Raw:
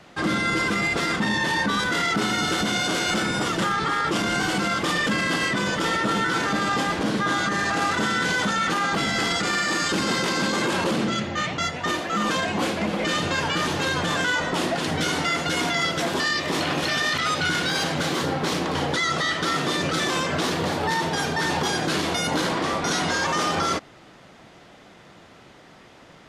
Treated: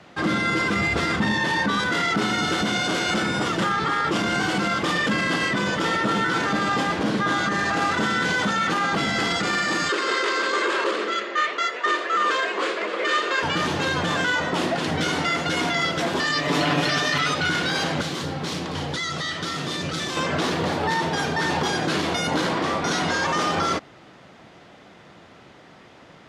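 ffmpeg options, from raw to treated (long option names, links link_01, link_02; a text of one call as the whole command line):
ffmpeg -i in.wav -filter_complex "[0:a]asettb=1/sr,asplit=3[link_01][link_02][link_03];[link_01]atrim=end=0.734[link_04];[link_02]atrim=start=0.73:end=1.32,asetpts=PTS-STARTPTS,afade=type=in:duration=0.004:curve=qsin,afade=type=out:start_time=0.586:duration=0.004:curve=qsin,equalizer=frequency=76:width_type=o:width=0.77:gain=14[link_05];[link_03]atrim=start=1.316[link_06];[link_04][link_05]acrossfade=duration=0.004:curve1=hsin:curve2=qsin[link_07];[link_07][link_06]acrossfade=duration=0.004:curve1=qsin:curve2=hsin,asettb=1/sr,asplit=3[link_08][link_09][link_10];[link_08]atrim=end=9.894[link_11];[link_09]atrim=start=9.89:end=13.43,asetpts=PTS-STARTPTS,afade=type=in:duration=0.004:curve=qsin,afade=type=out:start_time=3.536:duration=0.004:curve=qsin,highpass=frequency=390:width=0.5412,highpass=frequency=390:width=1.3066,equalizer=frequency=400:width_type=q:width=4:gain=7,equalizer=frequency=790:width_type=q:width=4:gain=-10,equalizer=frequency=1200:width_type=q:width=4:gain=6,equalizer=frequency=1800:width_type=q:width=4:gain=4,equalizer=frequency=5800:width_type=q:width=4:gain=-4,lowpass=frequency=8600:width=0.5412,lowpass=frequency=8600:width=1.3066[link_12];[link_10]atrim=start=13.426[link_13];[link_11][link_12]acrossfade=duration=0.004:curve1=hsin:curve2=qsin[link_14];[link_14][link_13]acrossfade=duration=0.004:curve1=qsin:curve2=hsin,asettb=1/sr,asplit=3[link_15][link_16][link_17];[link_15]atrim=end=16.264[link_18];[link_16]atrim=start=16.26:end=17.33,asetpts=PTS-STARTPTS,afade=type=in:duration=0.004:curve=qsin,afade=type=out:start_time=1.066:duration=0.004:curve=qsin,aecho=1:1:6.9:0.84,atrim=end_sample=47187[link_19];[link_17]atrim=start=17.326[link_20];[link_18][link_19]acrossfade=duration=0.004:curve1=hsin:curve2=qsin[link_21];[link_21][link_20]acrossfade=duration=0.004:curve1=qsin:curve2=hsin,asettb=1/sr,asplit=3[link_22][link_23][link_24];[link_22]atrim=end=18.014[link_25];[link_23]atrim=start=18.01:end=20.17,asetpts=PTS-STARTPTS,afade=type=in:duration=0.004:curve=qsin,afade=type=out:start_time=2.156:duration=0.004:curve=qsin,acrossover=split=180|3000[link_26][link_27][link_28];[link_27]acompressor=threshold=-35dB:ratio=2:attack=3.2:release=140:knee=2.83:detection=peak[link_29];[link_26][link_29][link_28]amix=inputs=3:normalize=0[link_30];[link_24]atrim=start=20.166[link_31];[link_25][link_30]acrossfade=duration=0.004:curve1=hsin:curve2=qsin[link_32];[link_32][link_31]acrossfade=duration=0.004:curve1=qsin:curve2=hsin,highpass=56,highshelf=frequency=8400:gain=-11,volume=1dB" out.wav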